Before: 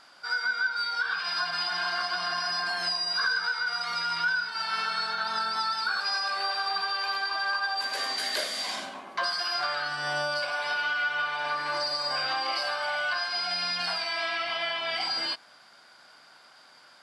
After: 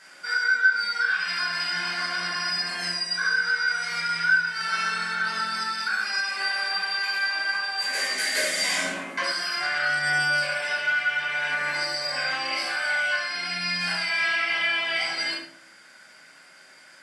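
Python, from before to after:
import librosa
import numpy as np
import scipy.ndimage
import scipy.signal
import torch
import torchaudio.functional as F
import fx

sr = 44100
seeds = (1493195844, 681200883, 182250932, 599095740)

y = scipy.signal.sosfilt(scipy.signal.butter(2, 150.0, 'highpass', fs=sr, output='sos'), x)
y = fx.rider(y, sr, range_db=10, speed_s=0.5)
y = fx.graphic_eq(y, sr, hz=(1000, 2000, 4000, 8000), db=(-10, 9, -8, 9))
y = fx.room_shoebox(y, sr, seeds[0], volume_m3=660.0, walls='furnished', distance_m=5.1)
y = y * 10.0 ** (-2.5 / 20.0)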